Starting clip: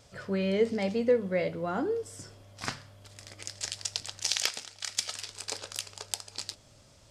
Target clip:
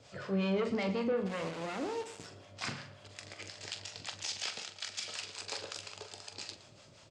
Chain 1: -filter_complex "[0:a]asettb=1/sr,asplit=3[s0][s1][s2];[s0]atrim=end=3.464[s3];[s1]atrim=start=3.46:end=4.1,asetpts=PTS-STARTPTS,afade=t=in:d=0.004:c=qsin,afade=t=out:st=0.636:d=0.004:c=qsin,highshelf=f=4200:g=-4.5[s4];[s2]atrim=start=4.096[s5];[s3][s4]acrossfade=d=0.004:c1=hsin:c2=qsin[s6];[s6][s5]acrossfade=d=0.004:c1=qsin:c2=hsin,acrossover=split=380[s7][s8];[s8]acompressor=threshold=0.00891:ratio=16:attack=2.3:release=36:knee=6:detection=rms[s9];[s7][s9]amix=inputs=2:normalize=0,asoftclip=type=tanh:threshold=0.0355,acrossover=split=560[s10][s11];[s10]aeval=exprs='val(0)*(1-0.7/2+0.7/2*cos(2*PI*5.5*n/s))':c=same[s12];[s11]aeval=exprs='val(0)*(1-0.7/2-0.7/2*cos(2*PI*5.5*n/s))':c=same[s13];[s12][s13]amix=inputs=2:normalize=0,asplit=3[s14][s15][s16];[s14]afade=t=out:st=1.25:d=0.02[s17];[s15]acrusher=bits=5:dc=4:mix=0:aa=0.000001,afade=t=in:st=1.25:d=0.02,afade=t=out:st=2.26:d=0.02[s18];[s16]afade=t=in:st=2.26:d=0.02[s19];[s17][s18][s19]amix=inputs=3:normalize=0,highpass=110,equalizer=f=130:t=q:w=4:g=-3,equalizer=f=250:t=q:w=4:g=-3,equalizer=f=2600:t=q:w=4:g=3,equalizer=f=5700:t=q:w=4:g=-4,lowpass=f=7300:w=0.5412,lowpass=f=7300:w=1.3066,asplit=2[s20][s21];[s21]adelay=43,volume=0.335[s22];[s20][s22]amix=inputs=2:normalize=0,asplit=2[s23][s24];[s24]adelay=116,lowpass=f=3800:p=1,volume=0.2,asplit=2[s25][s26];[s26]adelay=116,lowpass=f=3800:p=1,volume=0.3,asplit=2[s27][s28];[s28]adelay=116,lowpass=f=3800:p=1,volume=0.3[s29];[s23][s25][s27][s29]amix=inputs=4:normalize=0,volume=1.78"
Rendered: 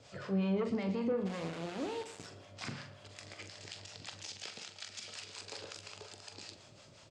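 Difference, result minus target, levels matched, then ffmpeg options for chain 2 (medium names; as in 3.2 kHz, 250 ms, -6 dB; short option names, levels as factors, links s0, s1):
compression: peak gain reduction +10 dB
-filter_complex "[0:a]asettb=1/sr,asplit=3[s0][s1][s2];[s0]atrim=end=3.464[s3];[s1]atrim=start=3.46:end=4.1,asetpts=PTS-STARTPTS,afade=t=in:d=0.004:c=qsin,afade=t=out:st=0.636:d=0.004:c=qsin,highshelf=f=4200:g=-4.5[s4];[s2]atrim=start=4.096[s5];[s3][s4]acrossfade=d=0.004:c1=hsin:c2=qsin[s6];[s6][s5]acrossfade=d=0.004:c1=qsin:c2=hsin,acrossover=split=380[s7][s8];[s8]acompressor=threshold=0.0299:ratio=16:attack=2.3:release=36:knee=6:detection=rms[s9];[s7][s9]amix=inputs=2:normalize=0,asoftclip=type=tanh:threshold=0.0355,acrossover=split=560[s10][s11];[s10]aeval=exprs='val(0)*(1-0.7/2+0.7/2*cos(2*PI*5.5*n/s))':c=same[s12];[s11]aeval=exprs='val(0)*(1-0.7/2-0.7/2*cos(2*PI*5.5*n/s))':c=same[s13];[s12][s13]amix=inputs=2:normalize=0,asplit=3[s14][s15][s16];[s14]afade=t=out:st=1.25:d=0.02[s17];[s15]acrusher=bits=5:dc=4:mix=0:aa=0.000001,afade=t=in:st=1.25:d=0.02,afade=t=out:st=2.26:d=0.02[s18];[s16]afade=t=in:st=2.26:d=0.02[s19];[s17][s18][s19]amix=inputs=3:normalize=0,highpass=110,equalizer=f=130:t=q:w=4:g=-3,equalizer=f=250:t=q:w=4:g=-3,equalizer=f=2600:t=q:w=4:g=3,equalizer=f=5700:t=q:w=4:g=-4,lowpass=f=7300:w=0.5412,lowpass=f=7300:w=1.3066,asplit=2[s20][s21];[s21]adelay=43,volume=0.335[s22];[s20][s22]amix=inputs=2:normalize=0,asplit=2[s23][s24];[s24]adelay=116,lowpass=f=3800:p=1,volume=0.2,asplit=2[s25][s26];[s26]adelay=116,lowpass=f=3800:p=1,volume=0.3,asplit=2[s27][s28];[s28]adelay=116,lowpass=f=3800:p=1,volume=0.3[s29];[s23][s25][s27][s29]amix=inputs=4:normalize=0,volume=1.78"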